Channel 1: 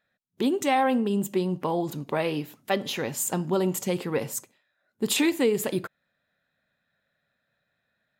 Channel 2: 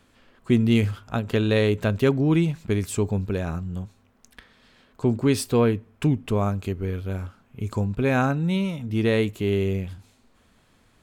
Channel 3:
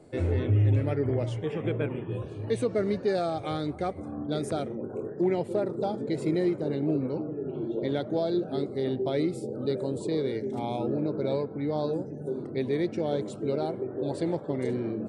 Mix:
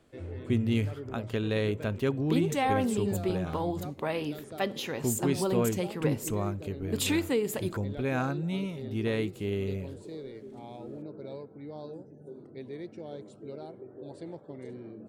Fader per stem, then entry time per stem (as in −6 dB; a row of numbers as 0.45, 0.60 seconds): −5.0, −8.5, −13.0 decibels; 1.90, 0.00, 0.00 seconds